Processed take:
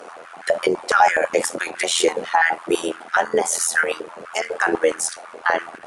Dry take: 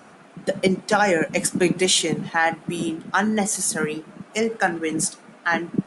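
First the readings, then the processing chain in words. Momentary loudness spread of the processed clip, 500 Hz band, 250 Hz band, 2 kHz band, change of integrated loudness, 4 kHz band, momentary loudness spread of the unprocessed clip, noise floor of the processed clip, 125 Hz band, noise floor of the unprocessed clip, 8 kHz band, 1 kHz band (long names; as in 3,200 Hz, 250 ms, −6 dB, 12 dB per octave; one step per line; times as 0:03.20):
10 LU, +3.0 dB, −6.5 dB, +3.5 dB, +2.0 dB, −1.0 dB, 9 LU, −41 dBFS, −16.0 dB, −49 dBFS, 0.0 dB, +4.5 dB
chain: sub-octave generator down 2 octaves, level +1 dB
brickwall limiter −17.5 dBFS, peak gain reduction 11 dB
amplitude modulation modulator 84 Hz, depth 60%
harmonic generator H 4 −36 dB, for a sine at −17.5 dBFS
high-pass on a step sequencer 12 Hz 440–1,600 Hz
level +9 dB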